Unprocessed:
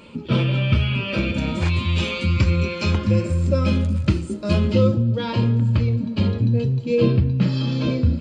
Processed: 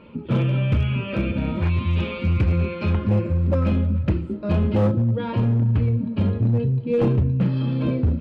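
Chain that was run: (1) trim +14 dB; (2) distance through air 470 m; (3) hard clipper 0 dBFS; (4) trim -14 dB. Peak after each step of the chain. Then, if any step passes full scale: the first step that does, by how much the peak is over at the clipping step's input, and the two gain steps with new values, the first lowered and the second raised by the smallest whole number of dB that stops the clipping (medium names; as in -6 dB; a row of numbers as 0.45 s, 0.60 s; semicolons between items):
+8.0 dBFS, +7.5 dBFS, 0.0 dBFS, -14.0 dBFS; step 1, 7.5 dB; step 1 +6 dB, step 4 -6 dB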